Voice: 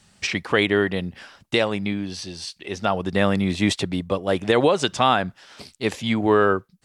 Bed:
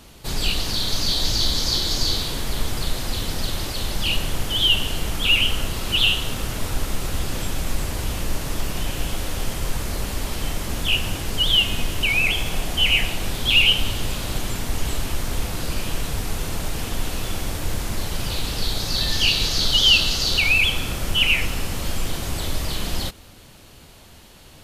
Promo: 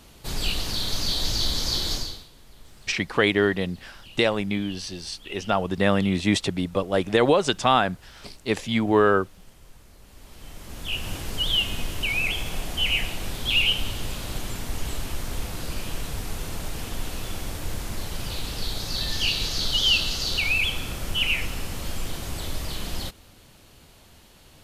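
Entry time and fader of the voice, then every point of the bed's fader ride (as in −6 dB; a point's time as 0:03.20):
2.65 s, −1.0 dB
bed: 0:01.94 −4 dB
0:02.30 −25 dB
0:09.99 −25 dB
0:11.13 −5.5 dB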